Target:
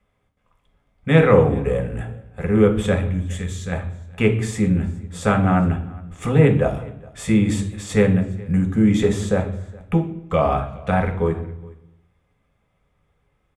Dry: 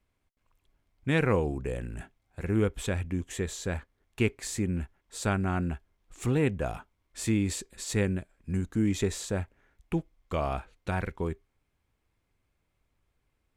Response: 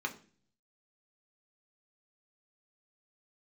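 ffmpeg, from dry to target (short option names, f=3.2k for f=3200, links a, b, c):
-filter_complex "[0:a]asplit=3[a][b][c];[a]afade=t=out:st=3.06:d=0.02[d];[b]equalizer=f=560:w=0.44:g=-13.5,afade=t=in:st=3.06:d=0.02,afade=t=out:st=3.71:d=0.02[e];[c]afade=t=in:st=3.71:d=0.02[f];[d][e][f]amix=inputs=3:normalize=0,asettb=1/sr,asplit=3[g][h][i];[g]atrim=end=6.674[j];[h]atrim=start=6.67:end=7.29,asetpts=PTS-STARTPTS,afade=t=in:d=0.004:c=qsin,afade=t=out:st=0.616:d=0.004:c=qsin,acrossover=split=130|3000[k][l][m];[l]acompressor=threshold=-47dB:ratio=6[n];[k][n][m]amix=inputs=3:normalize=0[o];[i]atrim=start=7.286[p];[j][o]acrossfade=d=0.004:c1=hsin:c2=qsin[q];[q][p]acrossfade=d=0.004:c1=qsin:c2=hsin,aecho=1:1:414:0.0631[r];[1:a]atrim=start_sample=2205,afade=t=out:st=0.43:d=0.01,atrim=end_sample=19404,asetrate=22491,aresample=44100[s];[r][s]afir=irnorm=-1:irlink=0,volume=2.5dB"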